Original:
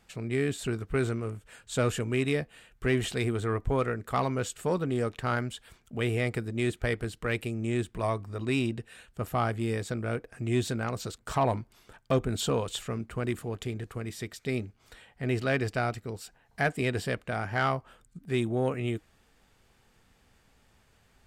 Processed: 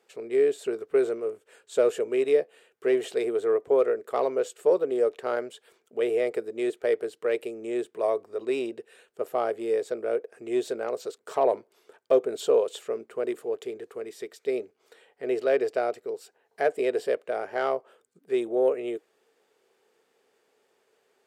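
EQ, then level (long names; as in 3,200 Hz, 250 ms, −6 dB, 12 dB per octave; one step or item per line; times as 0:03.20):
dynamic equaliser 590 Hz, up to +8 dB, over −45 dBFS, Q 2.3
high-pass with resonance 420 Hz, resonance Q 4.7
−5.5 dB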